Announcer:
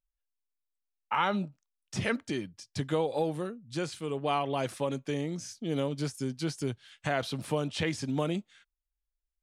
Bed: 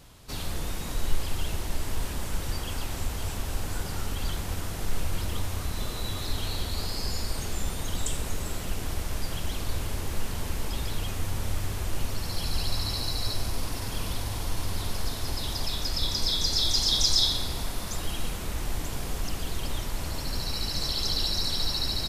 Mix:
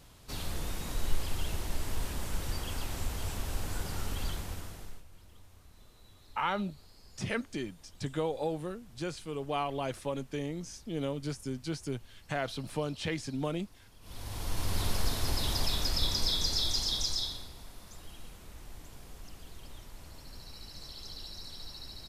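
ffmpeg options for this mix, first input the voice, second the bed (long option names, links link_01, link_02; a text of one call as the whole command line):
ffmpeg -i stem1.wav -i stem2.wav -filter_complex "[0:a]adelay=5250,volume=-3.5dB[link_01];[1:a]volume=22dB,afade=type=out:start_time=4.21:duration=0.82:silence=0.0794328,afade=type=in:start_time=14.01:duration=0.81:silence=0.0501187,afade=type=out:start_time=15.59:duration=1.93:silence=0.141254[link_02];[link_01][link_02]amix=inputs=2:normalize=0" out.wav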